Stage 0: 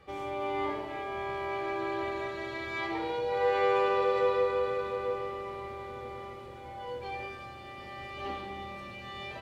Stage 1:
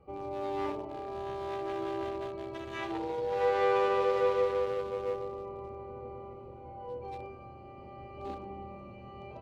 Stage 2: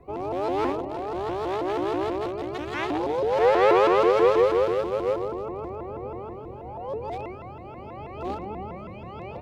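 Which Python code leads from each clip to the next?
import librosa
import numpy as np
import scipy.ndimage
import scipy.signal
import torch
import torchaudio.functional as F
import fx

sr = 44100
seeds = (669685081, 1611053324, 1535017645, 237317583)

y1 = fx.wiener(x, sr, points=25)
y2 = fx.vibrato_shape(y1, sr, shape='saw_up', rate_hz=6.2, depth_cents=250.0)
y2 = y2 * librosa.db_to_amplitude(8.5)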